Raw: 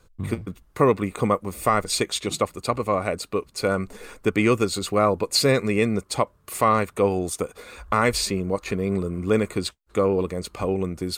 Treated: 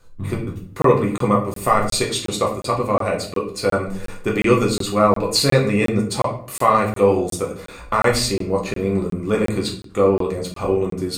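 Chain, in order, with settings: notch 2200 Hz, Q 27; shoebox room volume 58 m³, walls mixed, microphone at 0.8 m; crackling interface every 0.36 s, samples 1024, zero, from 0.82

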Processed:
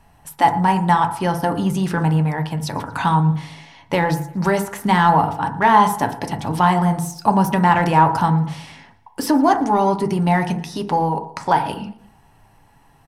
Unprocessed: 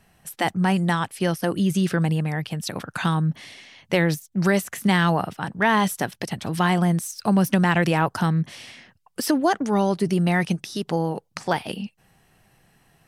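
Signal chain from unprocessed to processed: low shelf 140 Hz +11.5 dB; notches 50/100/150/200 Hz; reverb RT60 0.60 s, pre-delay 4 ms, DRR 5 dB; in parallel at -11.5 dB: overloaded stage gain 19.5 dB; on the sum: bell 920 Hz +14 dB 0.51 oct; on a send: feedback echo 0.116 s, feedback 51%, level -23 dB; on the sum: gain -2.5 dB

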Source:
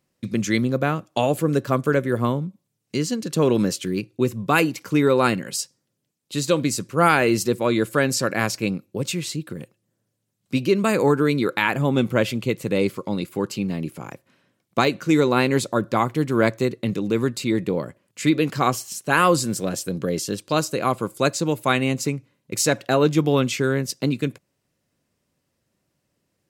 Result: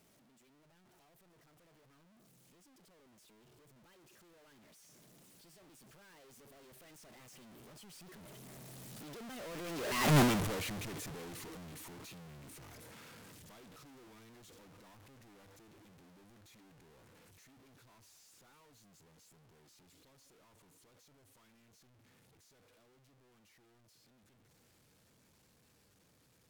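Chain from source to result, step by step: infinite clipping; Doppler pass-by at 10.17, 49 m/s, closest 3.1 m

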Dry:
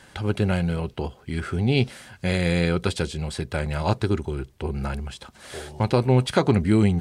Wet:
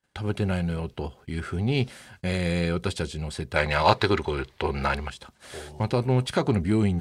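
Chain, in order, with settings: 3.56–5.1 graphic EQ 500/1000/2000/4000 Hz +7/+10/+11/+12 dB; gate -47 dBFS, range -32 dB; in parallel at -9 dB: overloaded stage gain 20 dB; on the sum: gain -5.5 dB

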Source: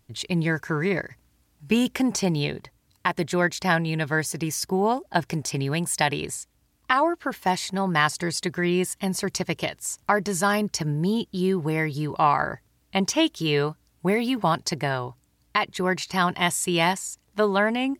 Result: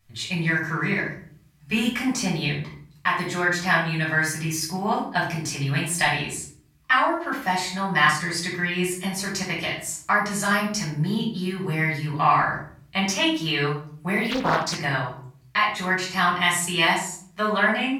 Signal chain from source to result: graphic EQ 125/250/500/2000 Hz -4/-4/-8/+5 dB; shoebox room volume 560 m³, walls furnished, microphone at 6.1 m; 14.3–14.79 Doppler distortion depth 0.78 ms; gain -6.5 dB

